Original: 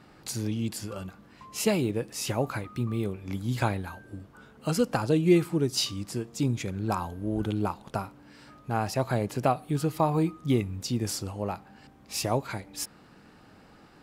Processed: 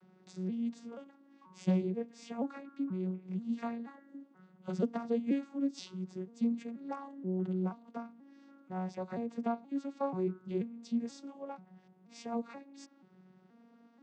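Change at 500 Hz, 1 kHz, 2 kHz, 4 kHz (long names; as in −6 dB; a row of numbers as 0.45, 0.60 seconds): −9.5, −11.5, −16.0, −20.0 decibels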